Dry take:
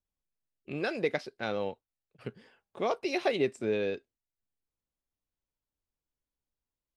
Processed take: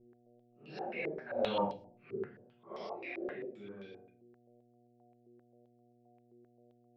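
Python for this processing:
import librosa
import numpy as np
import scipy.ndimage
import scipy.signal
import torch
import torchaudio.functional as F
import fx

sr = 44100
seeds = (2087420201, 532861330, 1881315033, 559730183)

y = fx.phase_scramble(x, sr, seeds[0], window_ms=200)
y = fx.doppler_pass(y, sr, speed_mps=18, closest_m=1.2, pass_at_s=1.76)
y = fx.dmg_buzz(y, sr, base_hz=120.0, harmonics=6, level_db=-77.0, tilt_db=-5, odd_only=False)
y = fx.room_shoebox(y, sr, seeds[1], volume_m3=320.0, walls='furnished', distance_m=1.1)
y = fx.filter_held_lowpass(y, sr, hz=7.6, low_hz=390.0, high_hz=4900.0)
y = F.gain(torch.from_numpy(y), 8.5).numpy()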